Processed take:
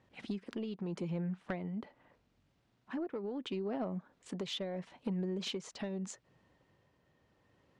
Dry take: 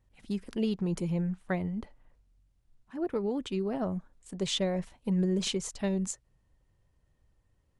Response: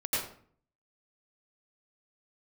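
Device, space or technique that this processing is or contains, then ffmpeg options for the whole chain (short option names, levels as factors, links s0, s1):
AM radio: -af "highpass=190,lowpass=4200,acompressor=threshold=0.00631:ratio=8,asoftclip=type=tanh:threshold=0.0158,tremolo=f=0.78:d=0.3,volume=3.35"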